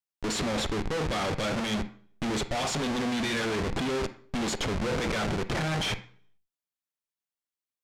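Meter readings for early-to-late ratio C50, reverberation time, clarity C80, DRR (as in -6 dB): 13.5 dB, 0.55 s, 18.0 dB, 11.5 dB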